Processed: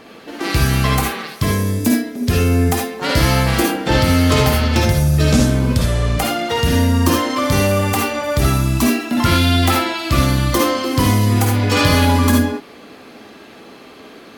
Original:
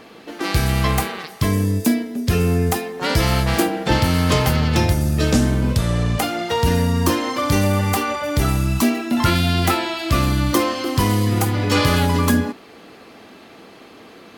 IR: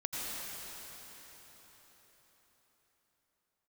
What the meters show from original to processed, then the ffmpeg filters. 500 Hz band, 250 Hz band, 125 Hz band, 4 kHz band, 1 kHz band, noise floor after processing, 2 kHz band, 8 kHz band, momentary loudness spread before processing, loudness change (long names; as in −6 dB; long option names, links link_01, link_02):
+3.0 dB, +3.0 dB, +3.0 dB, +3.5 dB, +2.5 dB, −40 dBFS, +3.5 dB, +3.5 dB, 4 LU, +3.0 dB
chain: -filter_complex "[1:a]atrim=start_sample=2205,atrim=end_sample=6615,asetrate=74970,aresample=44100[link_01];[0:a][link_01]afir=irnorm=-1:irlink=0,volume=8dB"